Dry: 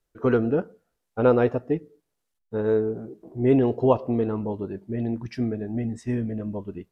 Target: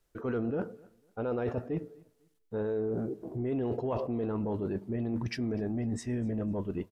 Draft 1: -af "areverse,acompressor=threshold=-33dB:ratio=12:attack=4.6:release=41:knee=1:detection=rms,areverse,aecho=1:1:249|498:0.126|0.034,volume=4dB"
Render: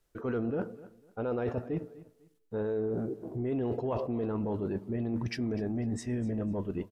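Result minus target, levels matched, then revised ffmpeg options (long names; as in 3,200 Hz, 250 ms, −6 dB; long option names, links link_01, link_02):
echo-to-direct +6.5 dB
-af "areverse,acompressor=threshold=-33dB:ratio=12:attack=4.6:release=41:knee=1:detection=rms,areverse,aecho=1:1:249|498:0.0596|0.0161,volume=4dB"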